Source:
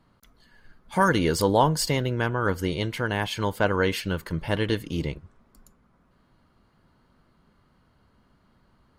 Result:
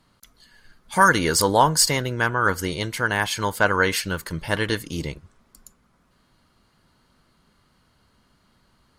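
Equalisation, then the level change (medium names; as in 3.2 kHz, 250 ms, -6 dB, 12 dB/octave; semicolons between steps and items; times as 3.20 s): peaking EQ 8.2 kHz +12.5 dB 3 oct; dynamic bell 3 kHz, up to -6 dB, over -39 dBFS, Q 1.4; dynamic bell 1.4 kHz, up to +7 dB, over -35 dBFS, Q 0.86; -1.0 dB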